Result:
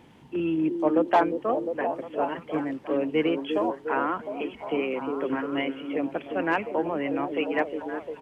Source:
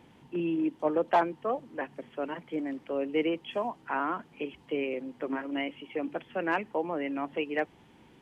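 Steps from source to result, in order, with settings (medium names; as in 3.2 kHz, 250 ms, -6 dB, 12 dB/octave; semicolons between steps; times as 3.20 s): harmony voices -12 st -18 dB; repeats whose band climbs or falls 354 ms, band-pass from 330 Hz, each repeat 0.7 oct, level -3 dB; trim +3.5 dB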